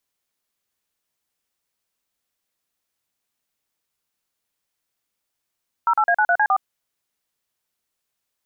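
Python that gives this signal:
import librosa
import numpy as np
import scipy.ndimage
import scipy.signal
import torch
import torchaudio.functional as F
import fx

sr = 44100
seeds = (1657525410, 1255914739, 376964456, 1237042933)

y = fx.dtmf(sr, digits='08A93C4', tone_ms=65, gap_ms=40, level_db=-17.0)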